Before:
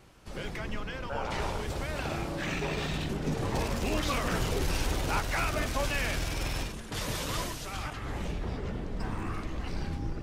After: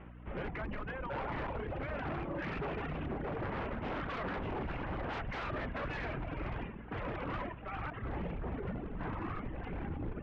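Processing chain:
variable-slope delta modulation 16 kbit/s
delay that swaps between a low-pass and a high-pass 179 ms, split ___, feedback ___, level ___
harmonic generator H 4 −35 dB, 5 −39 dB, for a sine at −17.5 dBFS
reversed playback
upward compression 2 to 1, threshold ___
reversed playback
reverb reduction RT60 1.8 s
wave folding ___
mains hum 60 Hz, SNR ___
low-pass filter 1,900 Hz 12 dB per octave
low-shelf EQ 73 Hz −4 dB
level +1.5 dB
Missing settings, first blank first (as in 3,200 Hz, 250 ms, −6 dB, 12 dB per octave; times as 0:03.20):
1,000 Hz, 77%, −13.5 dB, −46 dBFS, −33 dBFS, 12 dB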